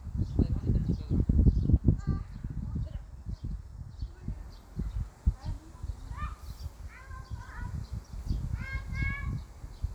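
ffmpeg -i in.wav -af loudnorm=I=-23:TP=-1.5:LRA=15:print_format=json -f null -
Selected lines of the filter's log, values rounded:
"input_i" : "-34.6",
"input_tp" : "-10.5",
"input_lra" : "9.7",
"input_thresh" : "-44.8",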